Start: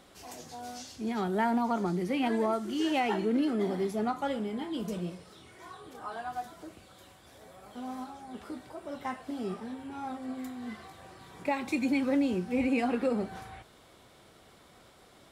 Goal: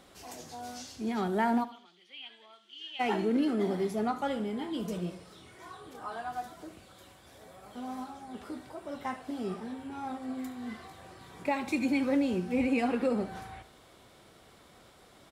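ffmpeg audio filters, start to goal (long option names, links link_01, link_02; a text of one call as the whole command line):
ffmpeg -i in.wav -filter_complex "[0:a]asplit=3[link_01][link_02][link_03];[link_01]afade=type=out:start_time=1.63:duration=0.02[link_04];[link_02]bandpass=frequency=3200:width_type=q:width=6.1:csg=0,afade=type=in:start_time=1.63:duration=0.02,afade=type=out:start_time=2.99:duration=0.02[link_05];[link_03]afade=type=in:start_time=2.99:duration=0.02[link_06];[link_04][link_05][link_06]amix=inputs=3:normalize=0,asplit=2[link_07][link_08];[link_08]aecho=0:1:73|146|219:0.168|0.0655|0.0255[link_09];[link_07][link_09]amix=inputs=2:normalize=0" out.wav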